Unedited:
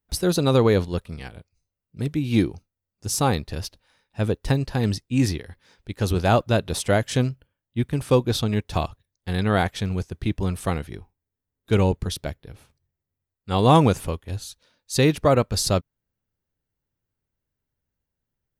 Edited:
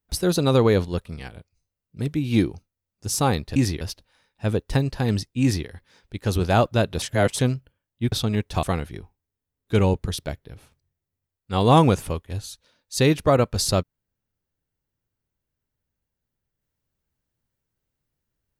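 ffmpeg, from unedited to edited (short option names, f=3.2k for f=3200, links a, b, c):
-filter_complex "[0:a]asplit=7[a][b][c][d][e][f][g];[a]atrim=end=3.562[h];[b]atrim=start=5.168:end=5.422[i];[c]atrim=start=3.558:end=6.772[j];[d]atrim=start=6.768:end=7.142,asetpts=PTS-STARTPTS,areverse[k];[e]atrim=start=7.138:end=7.872[l];[f]atrim=start=8.308:end=8.822[m];[g]atrim=start=10.608[n];[h][i]acrossfade=d=0.004:c1=hsin:c2=hsin[o];[o][j]acrossfade=d=0.004:c1=hsin:c2=hsin[p];[p][k]acrossfade=d=0.004:c1=hsin:c2=hsin[q];[q][l]acrossfade=d=0.004:c1=hsin:c2=hsin[r];[r][m]acrossfade=d=0.004:c1=hsin:c2=hsin[s];[s][n]acrossfade=d=0.004:c1=hsin:c2=hsin"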